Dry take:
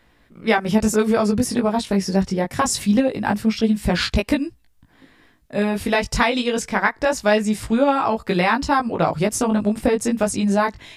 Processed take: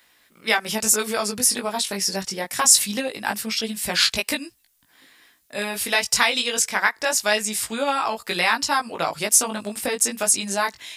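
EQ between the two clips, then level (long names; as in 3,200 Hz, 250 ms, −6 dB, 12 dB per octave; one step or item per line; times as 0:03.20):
spectral tilt +4.5 dB per octave
−3.0 dB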